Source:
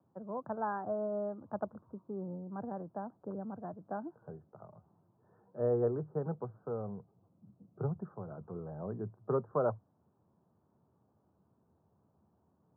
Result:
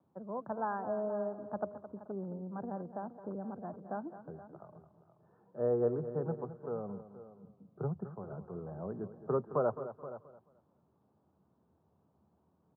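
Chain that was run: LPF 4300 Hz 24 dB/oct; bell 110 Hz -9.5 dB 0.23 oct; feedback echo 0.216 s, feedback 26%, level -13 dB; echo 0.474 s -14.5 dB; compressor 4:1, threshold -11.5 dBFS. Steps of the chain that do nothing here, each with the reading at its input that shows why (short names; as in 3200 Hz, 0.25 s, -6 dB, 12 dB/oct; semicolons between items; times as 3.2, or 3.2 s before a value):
LPF 4300 Hz: input band ends at 1400 Hz; compressor, threshold -11.5 dBFS: input peak -19.0 dBFS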